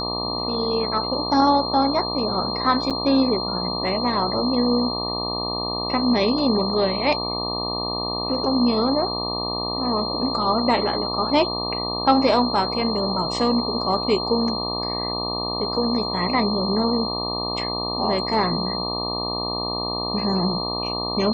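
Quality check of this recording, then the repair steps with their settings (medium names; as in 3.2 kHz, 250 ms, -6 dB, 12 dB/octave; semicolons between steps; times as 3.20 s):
buzz 60 Hz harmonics 20 -29 dBFS
whine 4.2 kHz -27 dBFS
2.90–2.91 s: dropout 6.8 ms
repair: de-hum 60 Hz, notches 20; band-stop 4.2 kHz, Q 30; interpolate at 2.90 s, 6.8 ms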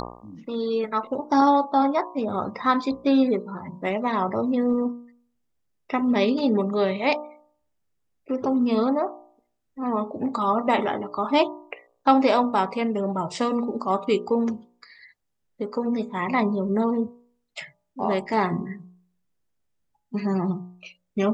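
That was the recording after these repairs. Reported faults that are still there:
nothing left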